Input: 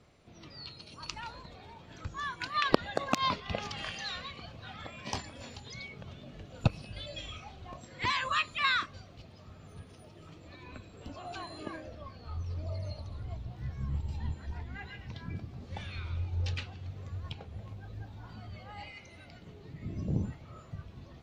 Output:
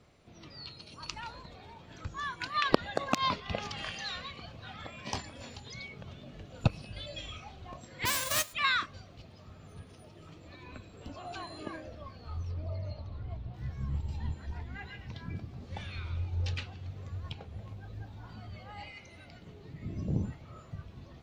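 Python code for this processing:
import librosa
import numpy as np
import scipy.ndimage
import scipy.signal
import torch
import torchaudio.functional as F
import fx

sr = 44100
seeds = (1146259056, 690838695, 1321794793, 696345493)

y = fx.envelope_flatten(x, sr, power=0.1, at=(8.05, 8.52), fade=0.02)
y = fx.air_absorb(y, sr, metres=160.0, at=(12.51, 13.54))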